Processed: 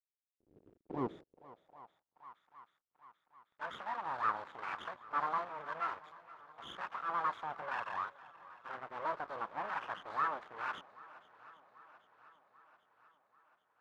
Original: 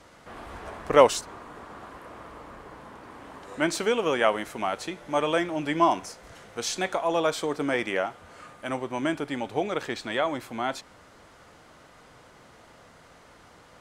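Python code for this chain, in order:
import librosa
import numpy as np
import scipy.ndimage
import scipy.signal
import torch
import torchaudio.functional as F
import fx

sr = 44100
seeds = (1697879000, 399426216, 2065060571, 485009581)

y = fx.freq_compress(x, sr, knee_hz=1100.0, ratio=4.0)
y = fx.transient(y, sr, attack_db=-4, sustain_db=2)
y = fx.rider(y, sr, range_db=4, speed_s=0.5)
y = fx.backlash(y, sr, play_db=-28.5)
y = fx.filter_lfo_notch(y, sr, shape='sine', hz=1.0, low_hz=710.0, high_hz=1500.0, q=0.73)
y = np.abs(y)
y = fx.echo_swing(y, sr, ms=788, ratio=1.5, feedback_pct=56, wet_db=-19.5)
y = fx.filter_sweep_bandpass(y, sr, from_hz=360.0, to_hz=1200.0, start_s=1.08, end_s=2.37, q=2.4)
y = y * librosa.db_to_amplitude(3.5)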